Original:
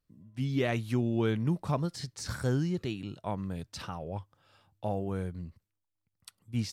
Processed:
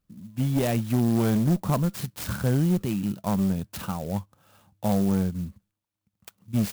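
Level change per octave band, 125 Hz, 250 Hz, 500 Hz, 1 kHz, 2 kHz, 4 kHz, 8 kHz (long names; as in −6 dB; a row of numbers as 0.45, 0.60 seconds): +7.0, +9.0, +4.0, +5.5, +1.5, +2.5, +7.5 decibels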